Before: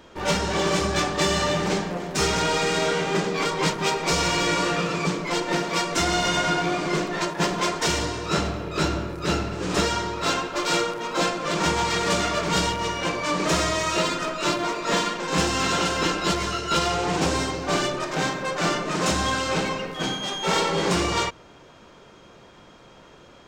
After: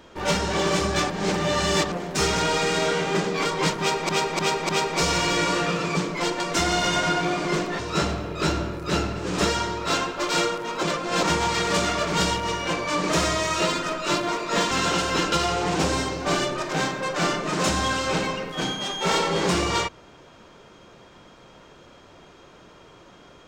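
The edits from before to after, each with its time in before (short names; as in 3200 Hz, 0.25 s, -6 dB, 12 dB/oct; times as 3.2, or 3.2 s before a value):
1.1–1.92 reverse
3.79–4.09 loop, 4 plays
5.5–5.81 cut
7.2–8.15 cut
11.19–11.59 reverse
15.07–15.58 cut
16.19–16.74 cut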